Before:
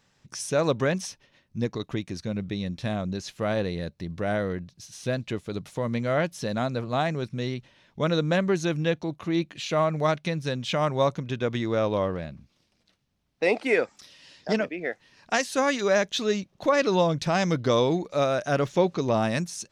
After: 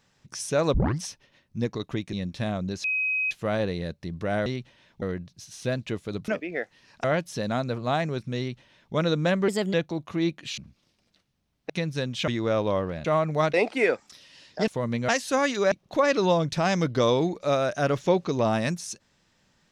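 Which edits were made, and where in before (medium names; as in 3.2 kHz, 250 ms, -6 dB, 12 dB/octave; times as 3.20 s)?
0.74 s: tape start 0.27 s
2.13–2.57 s: delete
3.28 s: add tone 2.53 kHz -23 dBFS 0.47 s
5.69–6.10 s: swap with 14.57–15.33 s
7.44–8.00 s: copy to 4.43 s
8.54–8.86 s: speed 125%
9.70–10.19 s: swap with 12.31–13.43 s
10.77–11.54 s: delete
15.96–16.41 s: delete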